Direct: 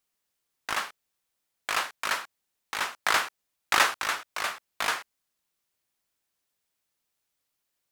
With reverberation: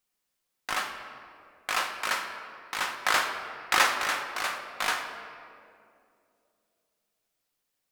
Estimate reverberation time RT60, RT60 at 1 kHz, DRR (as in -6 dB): 2.6 s, 2.1 s, 4.0 dB